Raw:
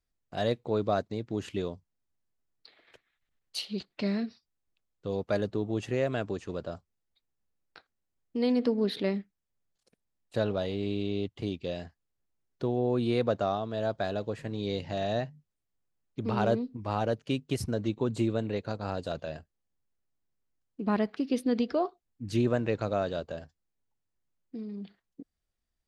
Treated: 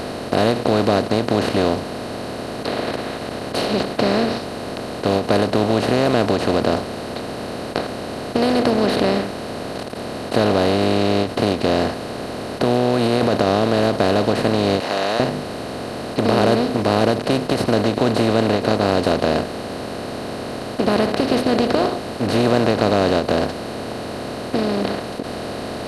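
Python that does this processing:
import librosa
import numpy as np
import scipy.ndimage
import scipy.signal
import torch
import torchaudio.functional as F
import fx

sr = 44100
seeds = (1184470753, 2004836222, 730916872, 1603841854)

y = fx.over_compress(x, sr, threshold_db=-32.0, ratio=-1.0, at=(12.63, 13.48))
y = fx.highpass(y, sr, hz=1000.0, slope=24, at=(14.8, 15.2))
y = fx.bin_compress(y, sr, power=0.2)
y = fx.peak_eq(y, sr, hz=6600.0, db=-3.0, octaves=0.77)
y = fx.end_taper(y, sr, db_per_s=150.0)
y = F.gain(torch.from_numpy(y), 3.5).numpy()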